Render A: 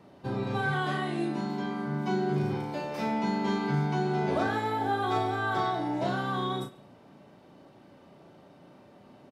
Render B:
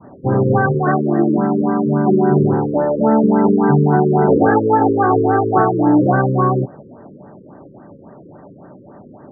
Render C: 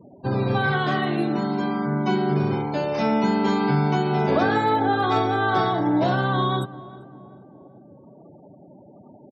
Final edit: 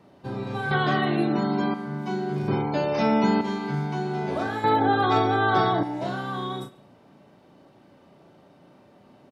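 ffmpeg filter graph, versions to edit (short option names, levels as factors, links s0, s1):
-filter_complex "[2:a]asplit=3[s0][s1][s2];[0:a]asplit=4[s3][s4][s5][s6];[s3]atrim=end=0.712[s7];[s0]atrim=start=0.708:end=1.742[s8];[s4]atrim=start=1.738:end=2.482[s9];[s1]atrim=start=2.478:end=3.412[s10];[s5]atrim=start=3.408:end=4.642[s11];[s2]atrim=start=4.638:end=5.832[s12];[s6]atrim=start=5.828[s13];[s7][s8]acrossfade=d=0.004:c1=hsin:c2=hsin[s14];[s14][s9]acrossfade=d=0.004:c1=hsin:c2=hsin[s15];[s15][s10]acrossfade=d=0.004:c1=hsin:c2=hsin[s16];[s16][s11]acrossfade=d=0.004:c1=hsin:c2=hsin[s17];[s17][s12]acrossfade=d=0.004:c1=hsin:c2=hsin[s18];[s18][s13]acrossfade=d=0.004:c1=hsin:c2=hsin"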